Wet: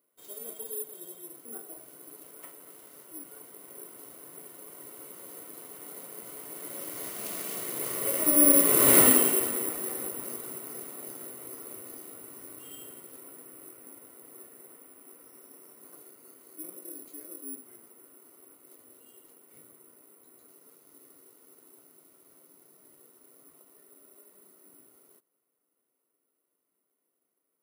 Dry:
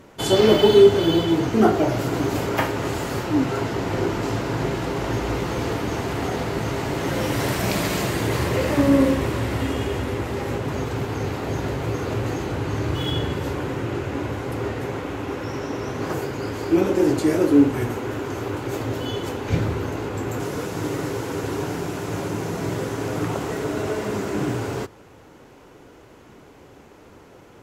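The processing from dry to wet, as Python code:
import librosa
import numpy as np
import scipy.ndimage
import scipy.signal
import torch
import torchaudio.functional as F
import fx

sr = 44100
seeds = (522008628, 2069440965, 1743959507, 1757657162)

y = fx.doppler_pass(x, sr, speed_mps=20, closest_m=2.5, pass_at_s=8.98)
y = scipy.signal.sosfilt(scipy.signal.butter(2, 260.0, 'highpass', fs=sr, output='sos'), y)
y = fx.notch_comb(y, sr, f0_hz=830.0)
y = (np.kron(y[::4], np.eye(4)[0]) * 4)[:len(y)]
y = y * 10.0 ** (6.0 / 20.0)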